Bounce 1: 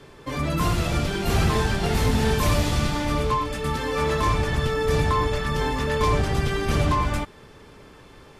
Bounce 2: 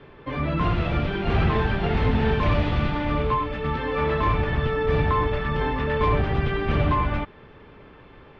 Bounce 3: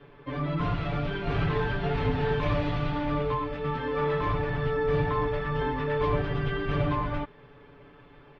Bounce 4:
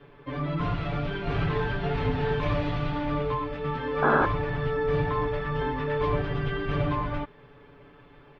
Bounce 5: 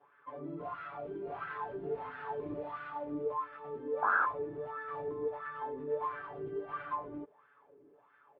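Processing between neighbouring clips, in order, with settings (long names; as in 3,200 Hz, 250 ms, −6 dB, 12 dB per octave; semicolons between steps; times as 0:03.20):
low-pass filter 3,100 Hz 24 dB per octave
comb filter 7 ms, depth 90%; level −7.5 dB
sound drawn into the spectrogram noise, 0:04.02–0:04.26, 210–1,700 Hz −22 dBFS
LFO wah 1.5 Hz 330–1,500 Hz, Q 5.2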